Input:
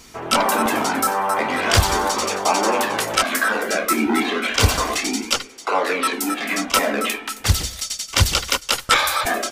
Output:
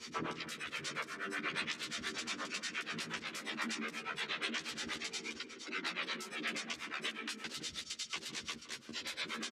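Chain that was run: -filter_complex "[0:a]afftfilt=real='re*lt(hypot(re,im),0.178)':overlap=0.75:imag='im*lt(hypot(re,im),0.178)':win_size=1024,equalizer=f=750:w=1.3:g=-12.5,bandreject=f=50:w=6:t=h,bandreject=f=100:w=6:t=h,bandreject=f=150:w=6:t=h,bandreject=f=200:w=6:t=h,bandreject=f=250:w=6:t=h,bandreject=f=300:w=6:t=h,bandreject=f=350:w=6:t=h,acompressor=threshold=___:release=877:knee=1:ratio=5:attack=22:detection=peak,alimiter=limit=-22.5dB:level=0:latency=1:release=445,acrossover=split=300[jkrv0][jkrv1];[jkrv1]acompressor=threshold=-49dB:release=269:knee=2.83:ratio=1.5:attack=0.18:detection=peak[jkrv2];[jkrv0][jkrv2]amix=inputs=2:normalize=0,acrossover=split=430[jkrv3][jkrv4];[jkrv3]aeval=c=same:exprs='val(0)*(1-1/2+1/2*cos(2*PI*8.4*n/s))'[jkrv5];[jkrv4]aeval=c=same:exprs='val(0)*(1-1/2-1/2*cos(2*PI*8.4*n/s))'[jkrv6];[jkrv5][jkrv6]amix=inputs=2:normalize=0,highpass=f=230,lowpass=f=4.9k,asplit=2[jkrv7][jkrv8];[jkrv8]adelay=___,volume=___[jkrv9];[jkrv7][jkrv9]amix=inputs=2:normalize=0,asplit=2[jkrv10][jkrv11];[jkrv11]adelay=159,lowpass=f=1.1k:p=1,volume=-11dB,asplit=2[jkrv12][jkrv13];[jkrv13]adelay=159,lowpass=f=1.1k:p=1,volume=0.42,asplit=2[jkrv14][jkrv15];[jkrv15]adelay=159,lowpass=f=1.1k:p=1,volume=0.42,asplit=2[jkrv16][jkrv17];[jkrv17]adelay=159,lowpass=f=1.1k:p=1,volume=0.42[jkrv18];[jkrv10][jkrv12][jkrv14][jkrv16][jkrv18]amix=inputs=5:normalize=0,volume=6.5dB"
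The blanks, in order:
-27dB, 13, -3dB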